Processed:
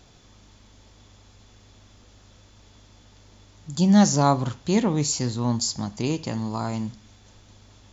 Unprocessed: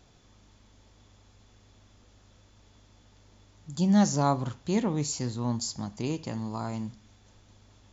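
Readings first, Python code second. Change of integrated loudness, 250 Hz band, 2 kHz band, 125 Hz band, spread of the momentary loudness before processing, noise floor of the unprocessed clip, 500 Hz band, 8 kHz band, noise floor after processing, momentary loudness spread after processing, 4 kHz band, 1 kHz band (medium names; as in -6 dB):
+6.0 dB, +5.5 dB, +6.5 dB, +5.5 dB, 12 LU, -60 dBFS, +5.5 dB, no reading, -54 dBFS, 12 LU, +8.0 dB, +5.5 dB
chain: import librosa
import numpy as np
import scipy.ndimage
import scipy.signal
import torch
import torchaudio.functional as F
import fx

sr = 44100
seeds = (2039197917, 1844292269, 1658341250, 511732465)

y = fx.peak_eq(x, sr, hz=4600.0, db=2.5, octaves=1.8)
y = F.gain(torch.from_numpy(y), 5.5).numpy()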